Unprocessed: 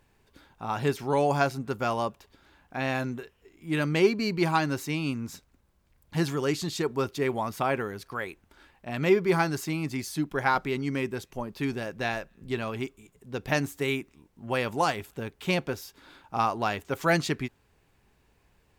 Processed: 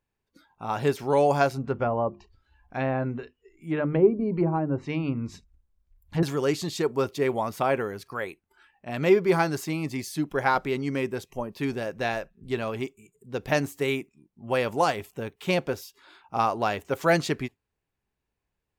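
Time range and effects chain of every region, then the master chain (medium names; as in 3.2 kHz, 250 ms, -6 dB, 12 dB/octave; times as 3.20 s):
1.53–6.23 s: hum notches 50/100/150/200/250/300/350 Hz + low-pass that closes with the level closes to 660 Hz, closed at -22.5 dBFS + bass shelf 120 Hz +9 dB
whole clip: spectral noise reduction 18 dB; dynamic bell 540 Hz, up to +5 dB, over -40 dBFS, Q 1.4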